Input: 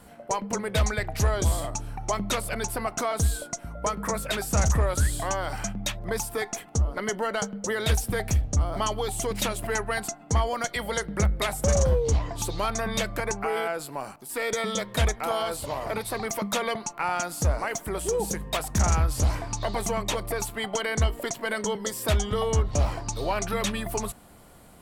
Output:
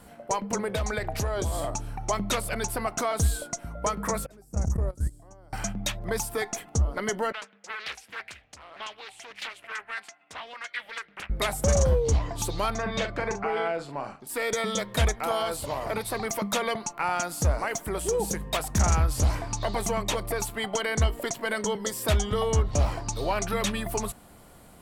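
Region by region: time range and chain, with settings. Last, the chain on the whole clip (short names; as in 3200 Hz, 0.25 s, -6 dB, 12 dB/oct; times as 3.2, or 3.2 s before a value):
0.58–1.77 bell 570 Hz +4.5 dB 2 oct + notch 2000 Hz, Q 26 + compressor 10:1, threshold -24 dBFS
4.26–5.53 gate -20 dBFS, range -58 dB + EQ curve 340 Hz 0 dB, 610 Hz -6 dB, 3700 Hz -22 dB, 5300 Hz -9 dB + fast leveller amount 100%
7.32–11.3 band-pass 2300 Hz, Q 2.1 + Doppler distortion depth 0.89 ms
12.75–14.27 air absorption 130 m + doubler 42 ms -8 dB
whole clip: dry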